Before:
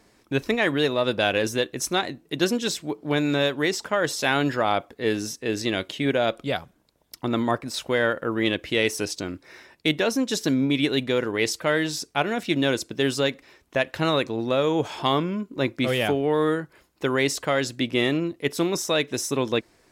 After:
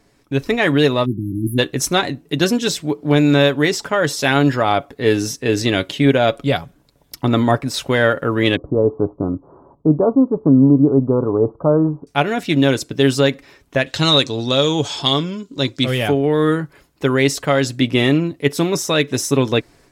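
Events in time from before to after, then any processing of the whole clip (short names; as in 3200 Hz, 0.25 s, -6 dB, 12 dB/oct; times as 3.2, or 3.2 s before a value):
1.05–1.59 spectral delete 370–10000 Hz
8.56–12.07 steep low-pass 1200 Hz 72 dB/oct
13.86–15.84 band shelf 5200 Hz +13 dB
whole clip: low shelf 190 Hz +7.5 dB; comb 7.1 ms, depth 35%; AGC; gain -1 dB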